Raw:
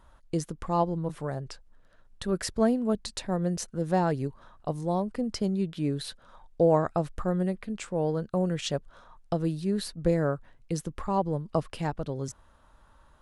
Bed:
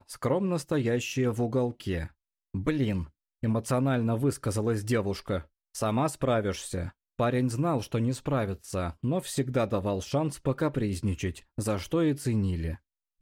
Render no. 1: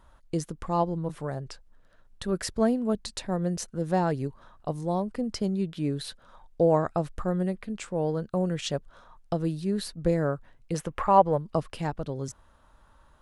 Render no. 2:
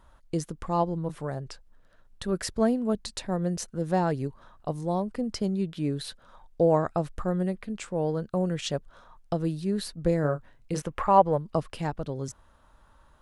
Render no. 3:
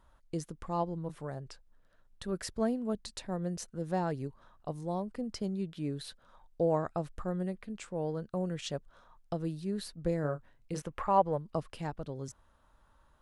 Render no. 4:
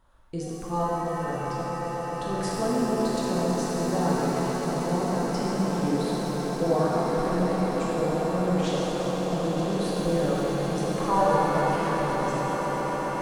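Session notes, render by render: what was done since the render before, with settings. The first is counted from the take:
10.74–11.38 s: high-order bell 1.2 kHz +10 dB 2.9 oct
10.21–10.82 s: doubling 27 ms -8 dB
trim -7 dB
echo with a slow build-up 132 ms, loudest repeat 8, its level -12 dB; pitch-shifted reverb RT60 3.1 s, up +7 st, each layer -8 dB, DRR -6 dB

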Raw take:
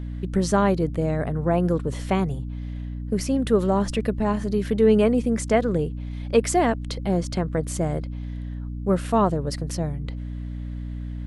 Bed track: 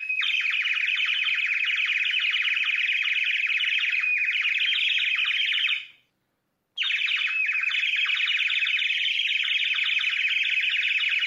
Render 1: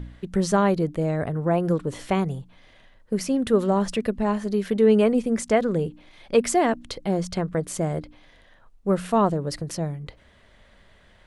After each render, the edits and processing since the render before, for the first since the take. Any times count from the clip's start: de-hum 60 Hz, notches 5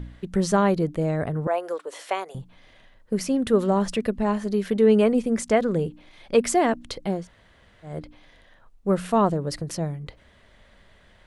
1.47–2.35 s: high-pass 480 Hz 24 dB/octave; 7.18–7.94 s: room tone, crossfade 0.24 s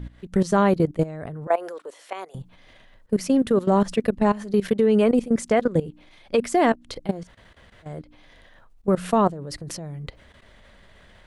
in parallel at -0.5 dB: peak limiter -14.5 dBFS, peak gain reduction 7.5 dB; on the sum: level held to a coarse grid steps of 17 dB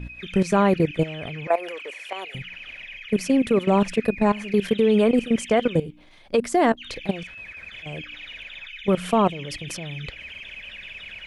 add bed track -15 dB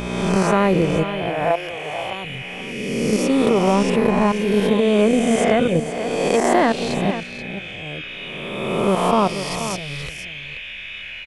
reverse spectral sustain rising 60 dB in 1.67 s; on a send: delay 481 ms -10.5 dB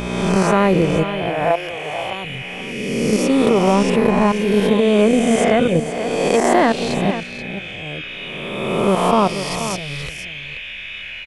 trim +2 dB; peak limiter -2 dBFS, peak gain reduction 1.5 dB

